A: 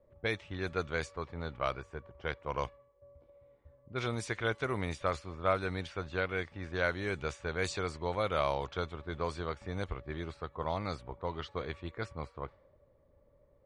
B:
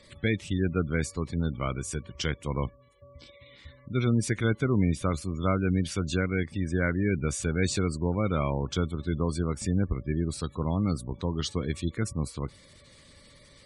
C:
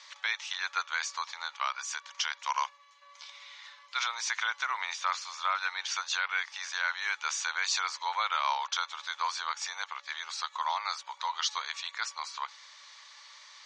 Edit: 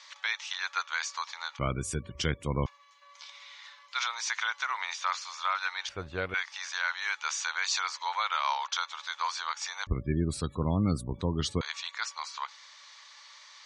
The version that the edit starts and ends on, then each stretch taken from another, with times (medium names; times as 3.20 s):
C
1.59–2.66 s: from B
5.89–6.34 s: from A
9.87–11.61 s: from B